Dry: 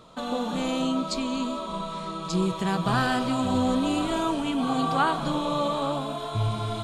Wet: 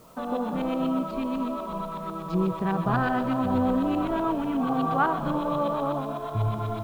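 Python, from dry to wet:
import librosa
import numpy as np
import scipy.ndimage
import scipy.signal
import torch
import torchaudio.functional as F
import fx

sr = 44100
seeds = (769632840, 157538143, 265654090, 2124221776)

y = fx.filter_lfo_lowpass(x, sr, shape='saw_up', hz=8.1, low_hz=770.0, high_hz=2400.0, q=0.88)
y = fx.echo_wet_highpass(y, sr, ms=141, feedback_pct=76, hz=1900.0, wet_db=-12.5)
y = fx.quant_dither(y, sr, seeds[0], bits=10, dither='triangular')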